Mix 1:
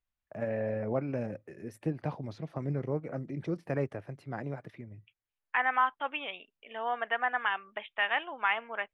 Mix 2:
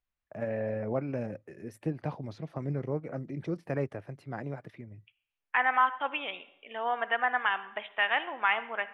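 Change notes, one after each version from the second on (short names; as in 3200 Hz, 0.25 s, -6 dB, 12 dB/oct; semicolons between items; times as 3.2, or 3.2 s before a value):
reverb: on, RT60 0.80 s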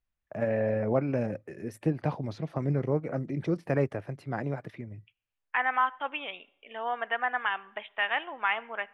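first voice +5.0 dB; second voice: send -9.5 dB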